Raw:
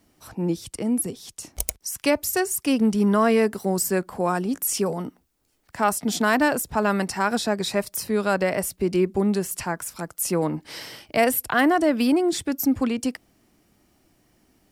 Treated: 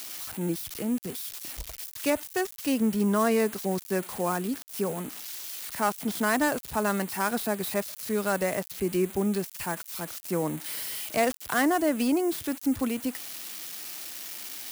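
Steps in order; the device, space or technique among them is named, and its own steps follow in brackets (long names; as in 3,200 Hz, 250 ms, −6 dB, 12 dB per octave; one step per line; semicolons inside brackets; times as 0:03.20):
budget class-D amplifier (gap after every zero crossing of 0.089 ms; spike at every zero crossing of −17.5 dBFS)
level −5 dB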